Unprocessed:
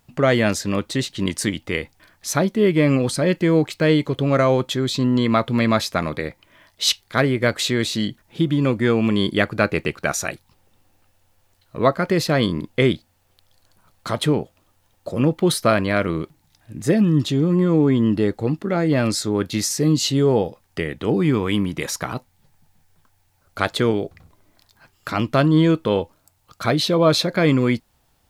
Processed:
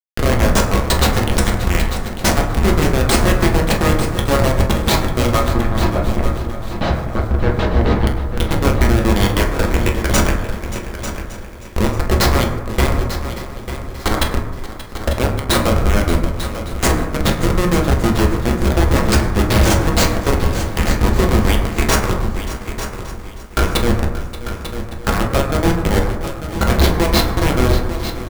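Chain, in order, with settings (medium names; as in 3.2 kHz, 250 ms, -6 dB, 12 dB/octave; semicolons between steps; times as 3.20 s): high-pass 300 Hz 12 dB/octave; tilt EQ +3 dB/octave; hum notches 50/100/150/200/250/300/350/400/450 Hz; compression 12:1, threshold -26 dBFS, peak gain reduction 18.5 dB; tremolo 6.7 Hz, depth 56%; Schmitt trigger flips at -26.5 dBFS; 5.50–8.07 s: tape spacing loss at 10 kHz 34 dB; feedback delay 895 ms, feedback 26%, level -11 dB; reverberation RT60 1.1 s, pre-delay 7 ms, DRR -0.5 dB; loudness maximiser +23 dB; bit-crushed delay 580 ms, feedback 55%, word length 6-bit, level -14.5 dB; trim -2.5 dB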